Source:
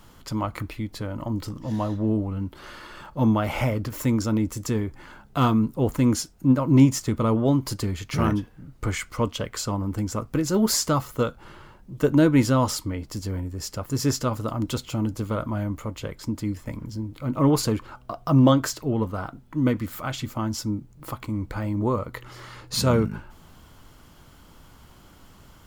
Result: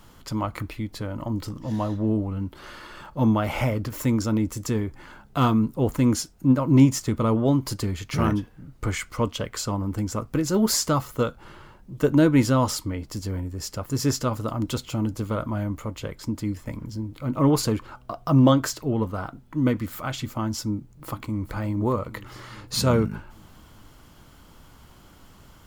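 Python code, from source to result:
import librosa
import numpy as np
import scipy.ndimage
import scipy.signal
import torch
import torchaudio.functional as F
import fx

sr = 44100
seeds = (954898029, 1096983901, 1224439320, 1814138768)

y = fx.echo_throw(x, sr, start_s=20.71, length_s=0.82, ms=410, feedback_pct=65, wet_db=-13.0)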